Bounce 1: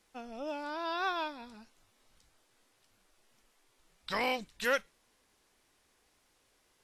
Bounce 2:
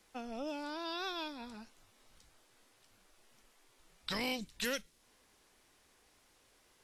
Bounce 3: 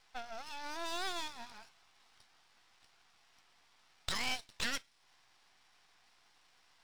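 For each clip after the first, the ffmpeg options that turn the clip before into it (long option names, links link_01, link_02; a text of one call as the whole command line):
ffmpeg -i in.wav -filter_complex "[0:a]acrossover=split=340|3000[link_01][link_02][link_03];[link_02]acompressor=threshold=-45dB:ratio=6[link_04];[link_01][link_04][link_03]amix=inputs=3:normalize=0,volume=3dB" out.wav
ffmpeg -i in.wav -af "afftfilt=real='re*between(b*sr/4096,660,5900)':imag='im*between(b*sr/4096,660,5900)':win_size=4096:overlap=0.75,aeval=exprs='max(val(0),0)':channel_layout=same,volume=6.5dB" out.wav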